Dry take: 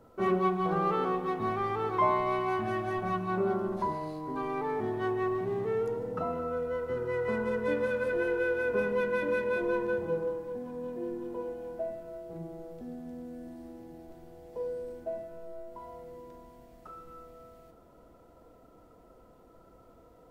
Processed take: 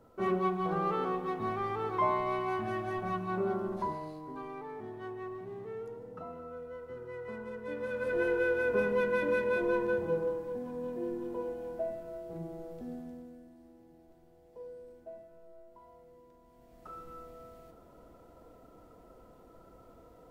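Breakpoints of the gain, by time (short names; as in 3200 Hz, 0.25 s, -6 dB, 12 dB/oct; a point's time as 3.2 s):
3.87 s -3 dB
4.69 s -11 dB
7.64 s -11 dB
8.21 s 0 dB
12.96 s 0 dB
13.49 s -11 dB
16.4 s -11 dB
16.94 s +1 dB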